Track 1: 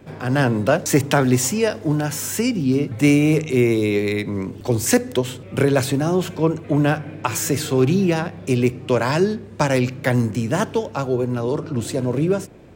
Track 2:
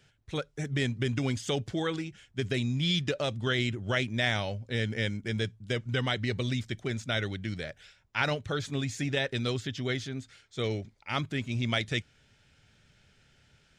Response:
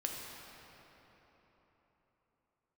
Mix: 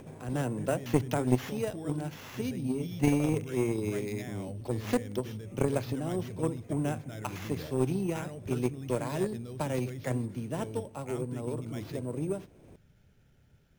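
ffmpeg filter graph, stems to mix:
-filter_complex "[0:a]lowpass=f=3600:p=1,equalizer=f=1500:t=o:w=0.79:g=-6.5,acompressor=mode=upward:threshold=0.0562:ratio=2.5,volume=0.447[s0];[1:a]tiltshelf=f=970:g=7.5,alimiter=limit=0.075:level=0:latency=1:release=59,acompressor=threshold=0.0141:ratio=2,volume=1.33[s1];[s0][s1]amix=inputs=2:normalize=0,acrusher=samples=5:mix=1:aa=0.000001,aeval=exprs='0.299*(cos(1*acos(clip(val(0)/0.299,-1,1)))-cos(1*PI/2))+0.0668*(cos(3*acos(clip(val(0)/0.299,-1,1)))-cos(3*PI/2))+0.0133*(cos(4*acos(clip(val(0)/0.299,-1,1)))-cos(4*PI/2))+0.00531*(cos(5*acos(clip(val(0)/0.299,-1,1)))-cos(5*PI/2))+0.0075*(cos(6*acos(clip(val(0)/0.299,-1,1)))-cos(6*PI/2))':c=same"

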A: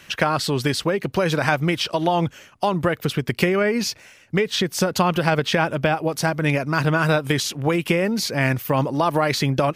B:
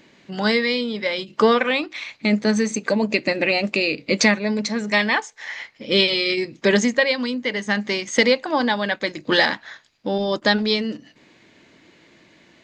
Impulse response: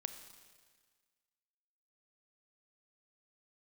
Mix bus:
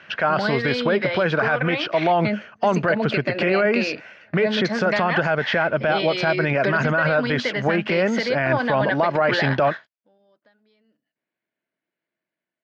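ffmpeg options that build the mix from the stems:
-filter_complex "[0:a]bass=f=250:g=-1,treble=f=4000:g=-5,volume=0.944,asplit=2[s0][s1];[1:a]acompressor=threshold=0.0631:ratio=8,volume=1.06[s2];[s1]apad=whole_len=557198[s3];[s2][s3]sidechaingate=range=0.0112:threshold=0.0126:ratio=16:detection=peak[s4];[s0][s4]amix=inputs=2:normalize=0,dynaudnorm=f=180:g=5:m=1.58,highpass=130,equalizer=f=290:t=q:w=4:g=-3,equalizer=f=650:t=q:w=4:g=7,equalizer=f=1500:t=q:w=4:g=8,equalizer=f=3800:t=q:w=4:g=-5,lowpass=f=4400:w=0.5412,lowpass=f=4400:w=1.3066,alimiter=limit=0.316:level=0:latency=1:release=19"

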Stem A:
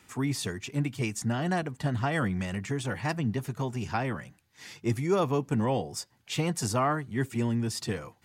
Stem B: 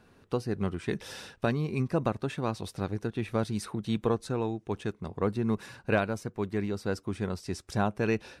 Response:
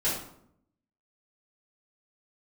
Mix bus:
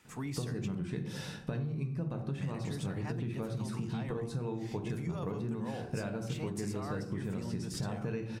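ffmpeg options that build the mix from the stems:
-filter_complex "[0:a]bandreject=f=50:t=h:w=6,bandreject=f=100:t=h:w=6,bandreject=f=150:t=h:w=6,bandreject=f=200:t=h:w=6,bandreject=f=250:t=h:w=6,bandreject=f=300:t=h:w=6,bandreject=f=350:t=h:w=6,bandreject=f=400:t=h:w=6,alimiter=limit=0.075:level=0:latency=1:release=32,volume=0.501,asplit=3[s0][s1][s2];[s0]atrim=end=0.75,asetpts=PTS-STARTPTS,afade=t=out:st=0.746:d=0.004:c=hsin[s3];[s1]atrim=start=0.75:end=2.38,asetpts=PTS-STARTPTS,volume=0[s4];[s2]atrim=start=2.38,asetpts=PTS-STARTPTS,afade=t=in:d=0.004:c=hsin[s5];[s3][s4][s5]concat=n=3:v=0:a=1,asplit=2[s6][s7];[s7]volume=0.0668[s8];[1:a]equalizer=f=140:w=1.4:g=13.5,acompressor=threshold=0.0708:ratio=6,adelay=50,volume=0.668,asplit=2[s9][s10];[s10]volume=0.282[s11];[2:a]atrim=start_sample=2205[s12];[s8][s11]amix=inputs=2:normalize=0[s13];[s13][s12]afir=irnorm=-1:irlink=0[s14];[s6][s9][s14]amix=inputs=3:normalize=0,acompressor=threshold=0.02:ratio=4"

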